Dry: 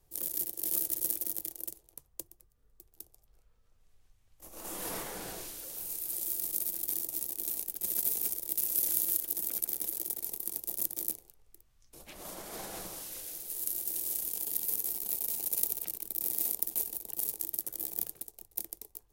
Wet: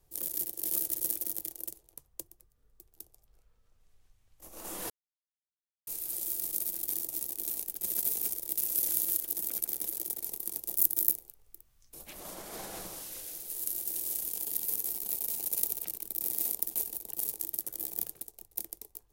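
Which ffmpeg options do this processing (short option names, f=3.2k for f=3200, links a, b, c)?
-filter_complex "[0:a]asettb=1/sr,asplit=3[a][b][c];[a]atrim=end=10.764[d];[b]atrim=start=10.76:end=12.2,asetpts=PTS-STARTPTS,afade=t=in:d=0.004:c=qsin,afade=t=out:st=1.436:d=0.004:c=qsin,highshelf=f=11k:g=11.5[e];[c]atrim=start=12.196[f];[d][e]acrossfade=d=0.004:c1=hsin:c2=qsin[g];[g][f]acrossfade=d=0.004:c1=qsin:c2=hsin,asplit=3[h][i][j];[h]atrim=end=4.9,asetpts=PTS-STARTPTS,afade=t=out:st=4.896:d=0.004:c=hsin[k];[i]atrim=start=4.9:end=5.87,asetpts=PTS-STARTPTS,volume=0[l];[j]atrim=start=5.87,asetpts=PTS-STARTPTS,afade=t=in:d=0.004:c=hsin[m];[k][l][m]concat=n=3:v=0:a=1"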